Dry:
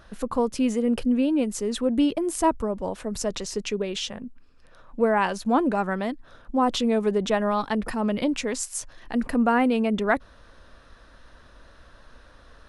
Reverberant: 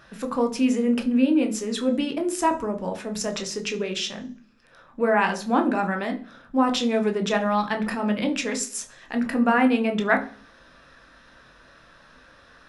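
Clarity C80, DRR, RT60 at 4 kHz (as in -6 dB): 19.5 dB, 4.5 dB, 0.50 s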